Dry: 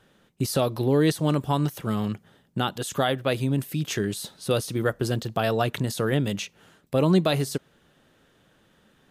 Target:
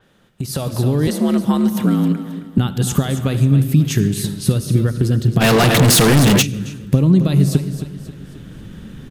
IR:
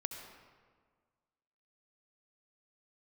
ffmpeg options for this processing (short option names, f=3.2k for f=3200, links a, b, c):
-filter_complex "[0:a]acompressor=threshold=-32dB:ratio=6,aecho=1:1:268|536|804|1072:0.282|0.11|0.0429|0.0167,asplit=2[a][b];[1:a]atrim=start_sample=2205,afade=t=out:st=0.37:d=0.01,atrim=end_sample=16758[c];[b][c]afir=irnorm=-1:irlink=0,volume=-0.5dB[d];[a][d]amix=inputs=2:normalize=0,asettb=1/sr,asplit=3[e][f][g];[e]atrim=end=1.074[h];[f]atrim=start=1.07:end=2.58,asetpts=PTS-STARTPTS,afade=t=in:d=0.004:c=qsin,afade=t=out:st=1.506:d=0.004:c=qsin,afreqshift=65[i];[g]atrim=start=2.576[j];[h][i]acrossfade=d=0.004:c1=hsin:c2=qsin[k];[k][j]acrossfade=d=0.004:c1=qsin:c2=hsin,asubboost=boost=7.5:cutoff=240,asplit=3[l][m][n];[l]afade=t=out:st=5.4:d=0.02[o];[m]asplit=2[p][q];[q]highpass=f=720:p=1,volume=32dB,asoftclip=type=tanh:threshold=-11dB[r];[p][r]amix=inputs=2:normalize=0,lowpass=f=6.7k:p=1,volume=-6dB,afade=t=in:st=5.4:d=0.02,afade=t=out:st=6.41:d=0.02[s];[n]afade=t=in:st=6.41:d=0.02[t];[o][s][t]amix=inputs=3:normalize=0,dynaudnorm=f=140:g=9:m=11.5dB,adynamicequalizer=threshold=0.0251:dfrequency=5700:dqfactor=0.7:tfrequency=5700:tqfactor=0.7:attack=5:release=100:ratio=0.375:range=3:mode=boostabove:tftype=highshelf,volume=-1dB"